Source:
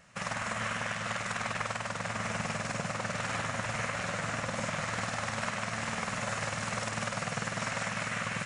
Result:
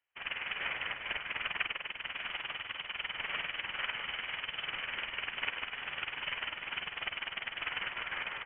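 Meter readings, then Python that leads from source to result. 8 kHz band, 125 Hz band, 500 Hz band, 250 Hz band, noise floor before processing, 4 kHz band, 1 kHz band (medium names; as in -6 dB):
under -40 dB, -22.0 dB, -13.5 dB, -19.0 dB, -39 dBFS, +3.0 dB, -9.0 dB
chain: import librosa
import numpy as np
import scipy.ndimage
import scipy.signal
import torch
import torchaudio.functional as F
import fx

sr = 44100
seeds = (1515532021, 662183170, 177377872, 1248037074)

y = scipy.signal.sosfilt(scipy.signal.butter(4, 340.0, 'highpass', fs=sr, output='sos'), x)
y = fx.freq_invert(y, sr, carrier_hz=3600)
y = fx.upward_expand(y, sr, threshold_db=-52.0, expansion=2.5)
y = y * librosa.db_to_amplitude(2.0)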